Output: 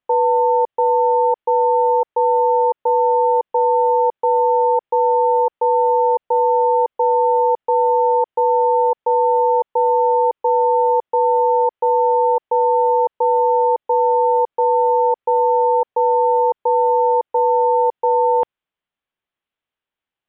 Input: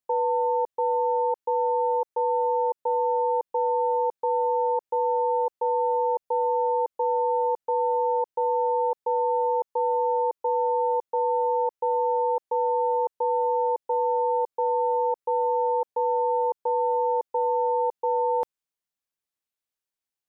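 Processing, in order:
Chebyshev low-pass filter 3,300 Hz, order 4
level +9 dB

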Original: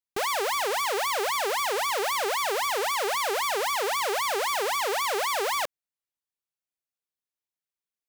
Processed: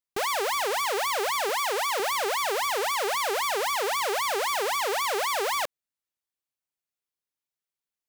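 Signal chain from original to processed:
0:01.49–0:02.00: high-pass filter 250 Hz 12 dB per octave

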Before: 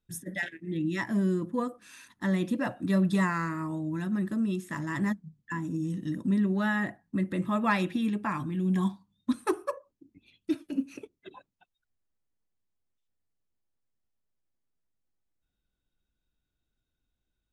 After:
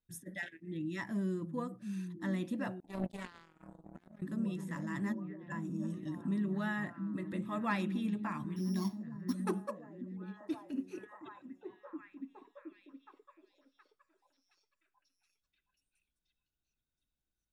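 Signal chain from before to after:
0:08.56–0:09.34: samples sorted by size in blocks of 8 samples
echo through a band-pass that steps 720 ms, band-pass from 160 Hz, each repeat 0.7 octaves, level −4 dB
0:02.80–0:04.22: power curve on the samples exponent 3
level −8.5 dB

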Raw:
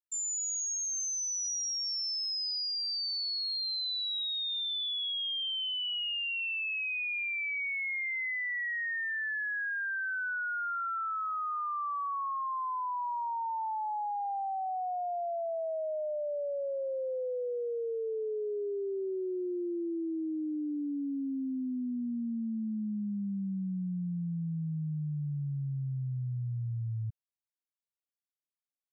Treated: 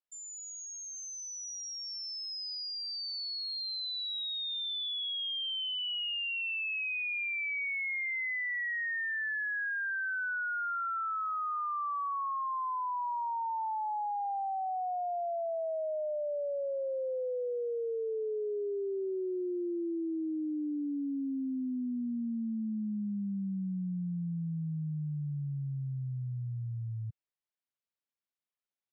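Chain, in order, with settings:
band-pass filter 110–4,100 Hz

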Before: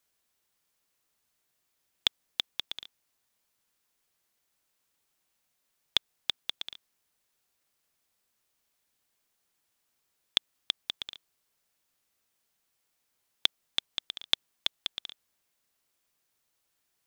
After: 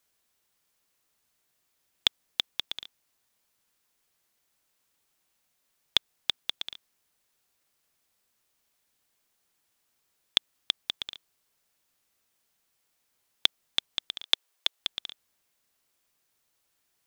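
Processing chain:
0:14.23–0:14.80: Butterworth high-pass 370 Hz
level +2.5 dB

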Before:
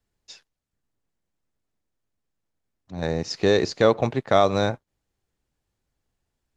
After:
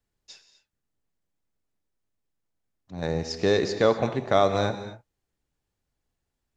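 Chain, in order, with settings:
reverb whose tail is shaped and stops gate 280 ms flat, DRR 9 dB
level −3 dB

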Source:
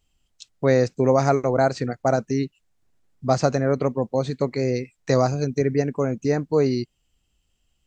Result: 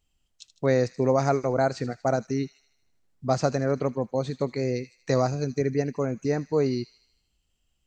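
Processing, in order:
delay with a high-pass on its return 78 ms, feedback 56%, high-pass 2,600 Hz, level −12.5 dB
level −4 dB

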